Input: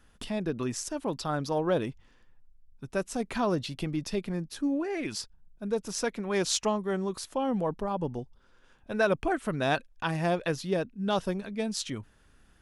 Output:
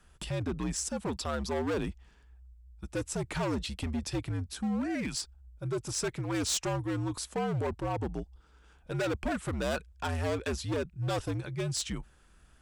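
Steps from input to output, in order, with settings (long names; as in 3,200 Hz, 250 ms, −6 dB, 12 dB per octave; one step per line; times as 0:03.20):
gain into a clipping stage and back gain 28 dB
parametric band 7,900 Hz +6.5 dB 0.25 octaves
frequency shifter −72 Hz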